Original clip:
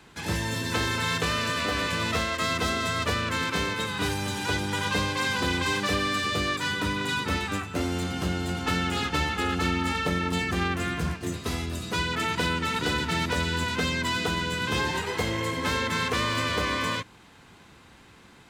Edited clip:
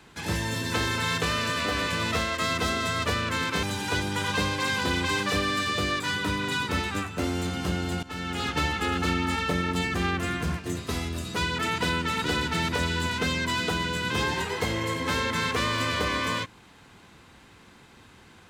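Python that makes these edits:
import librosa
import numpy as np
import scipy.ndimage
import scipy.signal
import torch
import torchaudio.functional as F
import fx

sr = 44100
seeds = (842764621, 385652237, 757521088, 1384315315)

y = fx.edit(x, sr, fx.cut(start_s=3.63, length_s=0.57),
    fx.fade_in_from(start_s=8.6, length_s=0.49, floor_db=-17.0), tone=tone)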